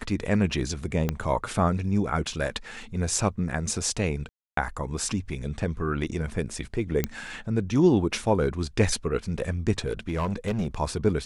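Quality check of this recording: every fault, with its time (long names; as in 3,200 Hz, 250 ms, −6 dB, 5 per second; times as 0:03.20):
0:01.09: click −12 dBFS
0:04.29–0:04.57: drop-out 283 ms
0:07.04: click −10 dBFS
0:09.86–0:10.75: clipping −22.5 dBFS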